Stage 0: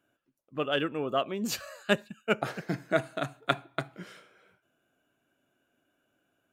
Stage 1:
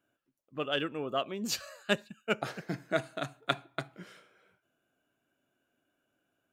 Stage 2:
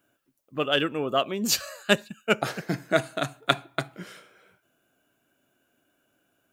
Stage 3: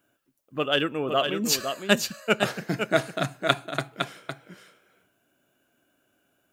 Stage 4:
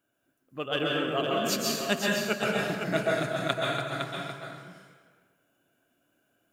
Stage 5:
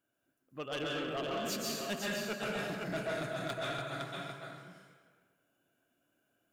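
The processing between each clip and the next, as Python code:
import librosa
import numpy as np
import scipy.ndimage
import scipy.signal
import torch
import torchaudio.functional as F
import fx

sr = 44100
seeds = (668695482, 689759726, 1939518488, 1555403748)

y1 = fx.dynamic_eq(x, sr, hz=5000.0, q=0.84, threshold_db=-46.0, ratio=4.0, max_db=6)
y1 = y1 * 10.0 ** (-4.0 / 20.0)
y2 = fx.high_shelf(y1, sr, hz=7900.0, db=7.5)
y2 = y2 * 10.0 ** (7.5 / 20.0)
y3 = y2 + 10.0 ** (-6.5 / 20.0) * np.pad(y2, (int(509 * sr / 1000.0), 0))[:len(y2)]
y4 = fx.rev_plate(y3, sr, seeds[0], rt60_s=1.4, hf_ratio=0.65, predelay_ms=115, drr_db=-3.5)
y4 = y4 * 10.0 ** (-7.5 / 20.0)
y5 = 10.0 ** (-25.5 / 20.0) * np.tanh(y4 / 10.0 ** (-25.5 / 20.0))
y5 = y5 * 10.0 ** (-5.5 / 20.0)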